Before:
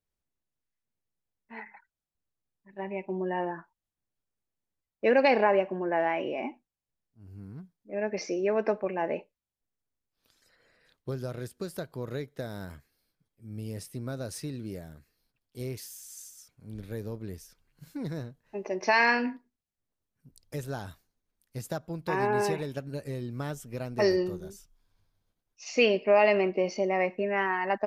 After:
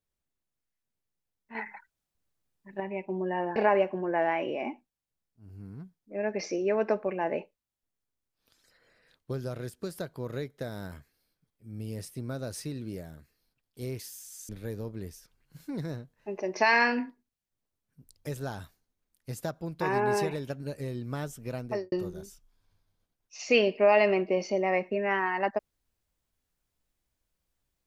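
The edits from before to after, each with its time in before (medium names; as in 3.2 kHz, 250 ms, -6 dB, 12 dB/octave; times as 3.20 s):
1.55–2.80 s: gain +6 dB
3.56–5.34 s: delete
16.27–16.76 s: delete
23.85–24.19 s: studio fade out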